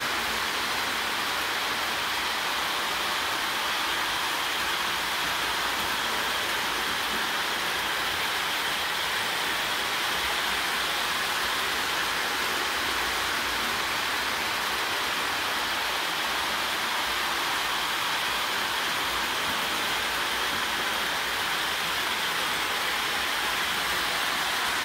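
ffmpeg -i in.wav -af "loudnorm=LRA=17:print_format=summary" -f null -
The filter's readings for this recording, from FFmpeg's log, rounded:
Input Integrated:    -25.8 LUFS
Input True Peak:     -14.1 dBTP
Input LRA:             0.7 LU
Input Threshold:     -35.8 LUFS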